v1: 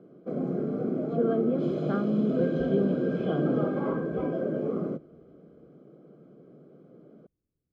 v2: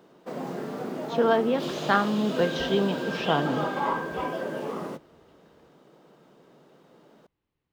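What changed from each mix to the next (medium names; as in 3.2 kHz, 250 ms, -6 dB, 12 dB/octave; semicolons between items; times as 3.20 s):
background -7.0 dB; master: remove boxcar filter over 48 samples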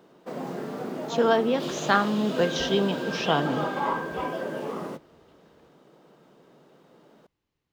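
speech: remove distance through air 170 m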